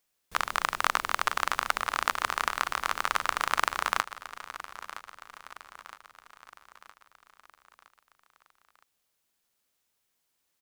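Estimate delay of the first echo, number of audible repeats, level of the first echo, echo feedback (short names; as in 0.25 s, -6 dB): 0.965 s, 4, -14.5 dB, 51%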